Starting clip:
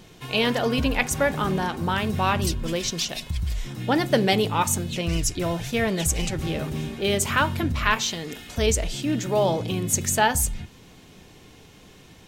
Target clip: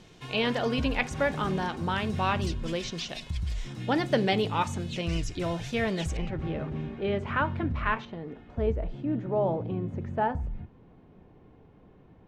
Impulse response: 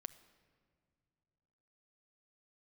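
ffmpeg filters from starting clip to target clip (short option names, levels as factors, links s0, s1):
-filter_complex "[0:a]acrossover=split=3900[s0][s1];[s1]acompressor=threshold=0.0158:ratio=4:attack=1:release=60[s2];[s0][s2]amix=inputs=2:normalize=0,asetnsamples=n=441:p=0,asendcmd='6.17 lowpass f 1800;8.05 lowpass f 1000',lowpass=7300,volume=0.596"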